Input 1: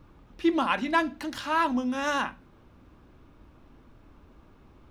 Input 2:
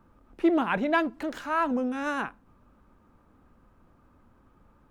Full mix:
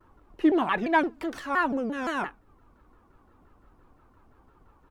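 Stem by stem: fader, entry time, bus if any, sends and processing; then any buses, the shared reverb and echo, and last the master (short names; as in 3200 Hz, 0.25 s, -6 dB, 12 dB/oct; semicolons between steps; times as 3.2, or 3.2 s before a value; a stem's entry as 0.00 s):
-8.0 dB, 0.00 s, no send, reverb removal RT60 0.55 s; bell 940 Hz +11 dB 0.63 oct; photocell phaser 5.8 Hz
-1.0 dB, 4.2 ms, no send, comb 2.5 ms, depth 45%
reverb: off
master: shaped vibrato saw down 5.8 Hz, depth 250 cents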